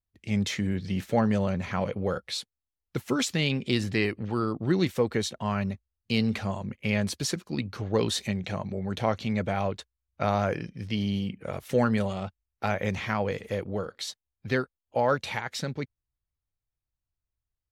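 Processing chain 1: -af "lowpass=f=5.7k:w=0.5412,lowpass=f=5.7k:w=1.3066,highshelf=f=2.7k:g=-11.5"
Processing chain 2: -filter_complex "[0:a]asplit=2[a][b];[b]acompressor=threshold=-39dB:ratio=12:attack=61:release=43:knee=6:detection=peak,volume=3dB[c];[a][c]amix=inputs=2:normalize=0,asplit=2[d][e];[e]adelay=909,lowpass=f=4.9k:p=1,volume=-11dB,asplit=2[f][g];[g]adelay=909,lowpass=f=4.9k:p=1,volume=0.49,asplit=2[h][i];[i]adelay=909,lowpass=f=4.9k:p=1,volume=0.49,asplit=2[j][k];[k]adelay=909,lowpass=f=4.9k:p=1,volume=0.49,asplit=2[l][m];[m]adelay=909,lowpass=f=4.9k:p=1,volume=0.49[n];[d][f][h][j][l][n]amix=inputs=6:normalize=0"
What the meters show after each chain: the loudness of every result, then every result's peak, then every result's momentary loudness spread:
-30.0, -25.5 LUFS; -12.0, -7.0 dBFS; 10, 11 LU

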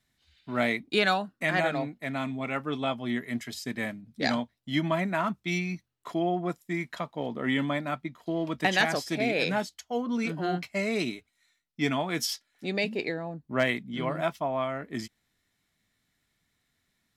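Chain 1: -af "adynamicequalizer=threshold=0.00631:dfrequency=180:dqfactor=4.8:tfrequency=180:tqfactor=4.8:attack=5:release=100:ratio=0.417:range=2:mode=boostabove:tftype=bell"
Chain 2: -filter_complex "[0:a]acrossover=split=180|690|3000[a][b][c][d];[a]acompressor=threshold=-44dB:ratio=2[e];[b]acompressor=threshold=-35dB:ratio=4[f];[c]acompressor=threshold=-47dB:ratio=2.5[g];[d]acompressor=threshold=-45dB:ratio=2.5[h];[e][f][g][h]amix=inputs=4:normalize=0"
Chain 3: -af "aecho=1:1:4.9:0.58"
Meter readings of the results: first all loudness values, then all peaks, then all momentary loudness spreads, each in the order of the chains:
-29.5, -36.0, -28.5 LUFS; -11.5, -19.5, -8.0 dBFS; 9, 5, 9 LU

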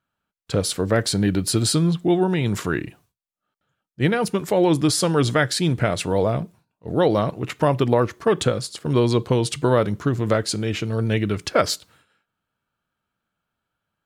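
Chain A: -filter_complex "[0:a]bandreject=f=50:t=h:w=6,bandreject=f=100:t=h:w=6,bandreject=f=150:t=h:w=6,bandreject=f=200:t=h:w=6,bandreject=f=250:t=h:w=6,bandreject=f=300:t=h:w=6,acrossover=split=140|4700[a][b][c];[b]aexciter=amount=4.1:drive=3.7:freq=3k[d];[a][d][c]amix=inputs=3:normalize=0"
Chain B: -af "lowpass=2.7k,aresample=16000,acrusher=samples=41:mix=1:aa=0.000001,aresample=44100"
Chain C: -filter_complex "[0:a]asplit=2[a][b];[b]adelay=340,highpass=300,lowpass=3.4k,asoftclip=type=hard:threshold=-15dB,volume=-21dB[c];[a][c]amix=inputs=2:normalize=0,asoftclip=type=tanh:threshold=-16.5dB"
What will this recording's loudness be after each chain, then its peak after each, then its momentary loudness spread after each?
-21.0, -23.0, -24.5 LUFS; -1.5, -7.0, -16.5 dBFS; 6, 7, 6 LU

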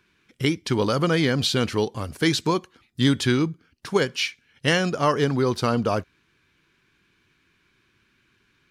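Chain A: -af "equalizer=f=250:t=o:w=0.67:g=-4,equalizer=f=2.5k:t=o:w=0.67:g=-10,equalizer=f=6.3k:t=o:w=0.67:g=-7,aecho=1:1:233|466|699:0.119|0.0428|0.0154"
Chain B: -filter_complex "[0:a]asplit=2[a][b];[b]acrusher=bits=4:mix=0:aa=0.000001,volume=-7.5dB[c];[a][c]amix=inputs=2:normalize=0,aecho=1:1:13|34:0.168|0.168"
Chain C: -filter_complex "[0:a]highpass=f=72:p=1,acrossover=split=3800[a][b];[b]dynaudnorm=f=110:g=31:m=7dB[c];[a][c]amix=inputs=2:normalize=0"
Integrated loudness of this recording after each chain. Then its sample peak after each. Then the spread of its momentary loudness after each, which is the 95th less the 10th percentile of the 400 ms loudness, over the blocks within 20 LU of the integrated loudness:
-25.0, -20.0, -23.0 LUFS; -9.0, -4.0, -5.0 dBFS; 8, 7, 7 LU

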